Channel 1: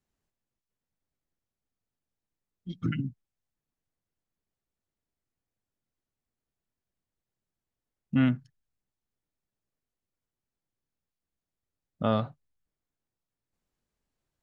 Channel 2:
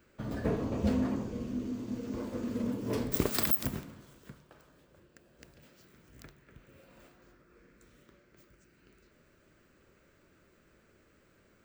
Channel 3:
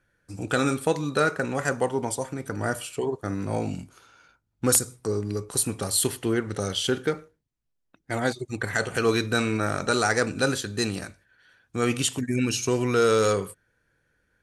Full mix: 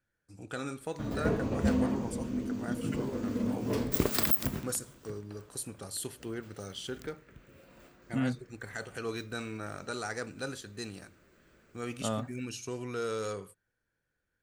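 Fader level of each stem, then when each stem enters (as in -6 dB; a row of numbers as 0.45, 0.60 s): -7.5, +1.5, -14.0 dB; 0.00, 0.80, 0.00 s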